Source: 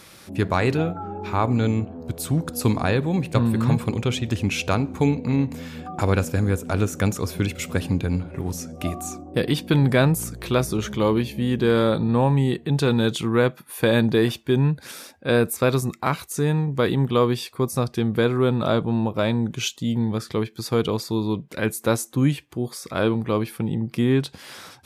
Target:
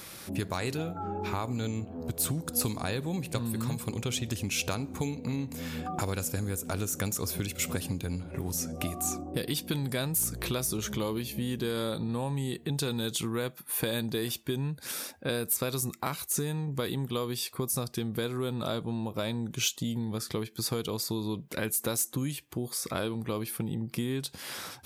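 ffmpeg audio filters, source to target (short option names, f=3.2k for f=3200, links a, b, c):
-filter_complex "[0:a]highshelf=f=11k:g=11,acrossover=split=4100[a][b];[a]acompressor=threshold=-30dB:ratio=6[c];[b]asoftclip=type=tanh:threshold=-21.5dB[d];[c][d]amix=inputs=2:normalize=0"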